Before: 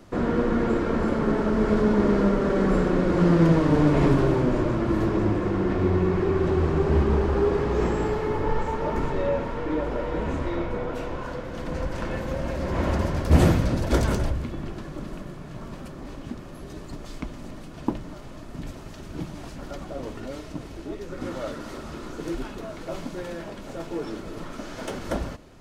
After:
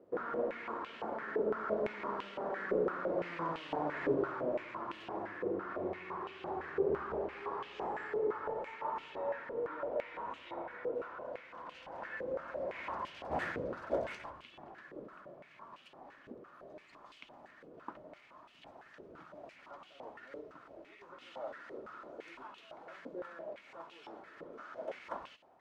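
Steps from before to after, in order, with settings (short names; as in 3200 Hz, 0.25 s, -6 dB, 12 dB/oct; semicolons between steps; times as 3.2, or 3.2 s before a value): stepped band-pass 5.9 Hz 470–2900 Hz; gain -1.5 dB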